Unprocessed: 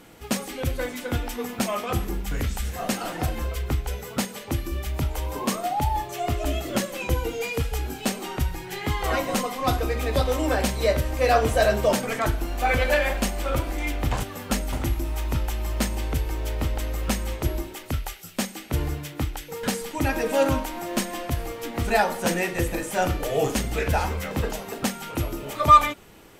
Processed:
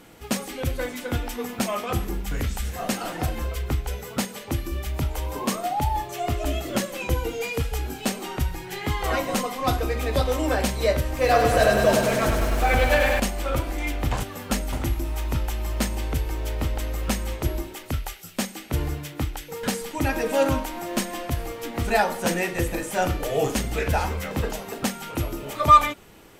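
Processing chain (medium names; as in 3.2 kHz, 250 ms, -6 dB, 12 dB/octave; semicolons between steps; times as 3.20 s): 11.05–13.20 s: bit-crushed delay 100 ms, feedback 80%, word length 8-bit, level -5 dB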